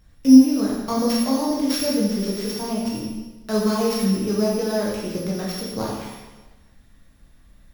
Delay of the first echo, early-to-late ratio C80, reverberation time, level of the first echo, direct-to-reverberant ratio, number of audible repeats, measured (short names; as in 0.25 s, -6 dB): none, 3.0 dB, 1.2 s, none, -5.0 dB, none